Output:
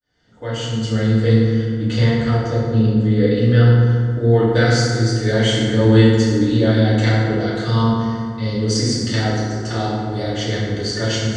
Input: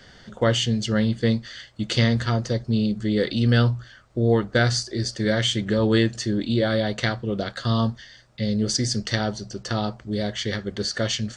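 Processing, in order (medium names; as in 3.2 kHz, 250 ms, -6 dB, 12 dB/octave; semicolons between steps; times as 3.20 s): fade-in on the opening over 1.33 s; 1.45–3.67 s: treble shelf 3.3 kHz -9.5 dB; FDN reverb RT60 2.1 s, low-frequency decay 1.3×, high-frequency decay 0.5×, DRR -9.5 dB; trim -5 dB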